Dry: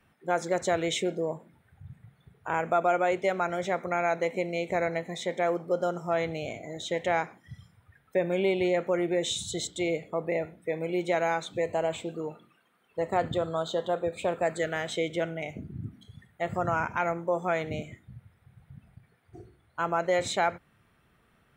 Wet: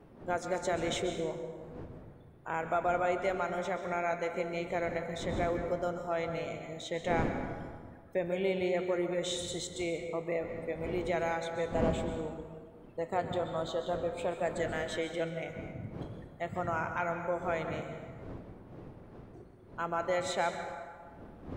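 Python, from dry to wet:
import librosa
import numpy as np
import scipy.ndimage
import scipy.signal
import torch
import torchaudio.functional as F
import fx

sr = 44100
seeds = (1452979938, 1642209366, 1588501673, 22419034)

y = fx.dmg_wind(x, sr, seeds[0], corner_hz=390.0, level_db=-40.0)
y = fx.rev_plate(y, sr, seeds[1], rt60_s=1.7, hf_ratio=0.55, predelay_ms=115, drr_db=6.0)
y = F.gain(torch.from_numpy(y), -6.0).numpy()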